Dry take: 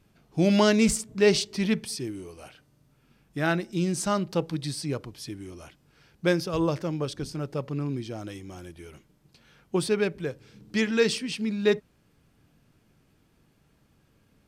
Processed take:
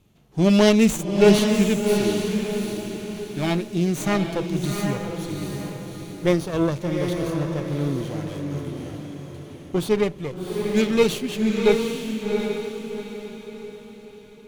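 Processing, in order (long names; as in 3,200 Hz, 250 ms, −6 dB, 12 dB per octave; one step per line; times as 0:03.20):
lower of the sound and its delayed copy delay 0.3 ms
harmonic and percussive parts rebalanced harmonic +5 dB
feedback delay with all-pass diffusion 754 ms, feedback 41%, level −4 dB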